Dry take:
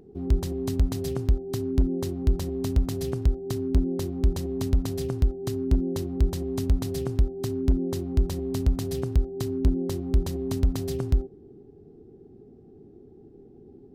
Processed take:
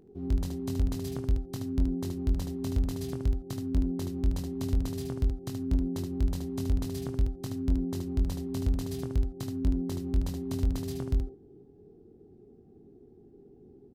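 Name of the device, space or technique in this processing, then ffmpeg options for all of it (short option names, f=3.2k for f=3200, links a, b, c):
slapback doubling: -filter_complex "[0:a]asplit=3[a][b][c];[b]adelay=22,volume=-6.5dB[d];[c]adelay=75,volume=-6dB[e];[a][d][e]amix=inputs=3:normalize=0,volume=-6.5dB"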